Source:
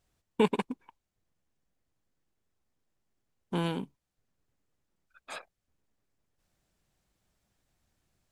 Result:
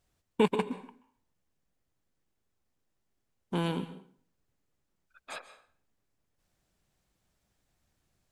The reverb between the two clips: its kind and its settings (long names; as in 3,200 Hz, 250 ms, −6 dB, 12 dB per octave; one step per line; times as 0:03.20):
dense smooth reverb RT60 0.51 s, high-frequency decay 0.85×, pre-delay 120 ms, DRR 13 dB